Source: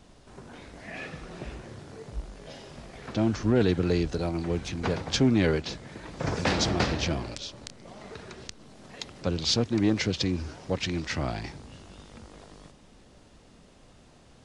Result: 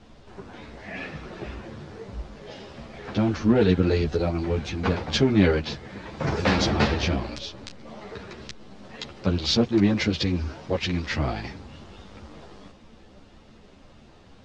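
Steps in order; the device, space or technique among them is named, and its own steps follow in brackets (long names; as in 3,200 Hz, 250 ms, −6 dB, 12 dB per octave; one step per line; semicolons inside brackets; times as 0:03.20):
string-machine ensemble chorus (string-ensemble chorus; low-pass filter 4,700 Hz 12 dB per octave)
level +7 dB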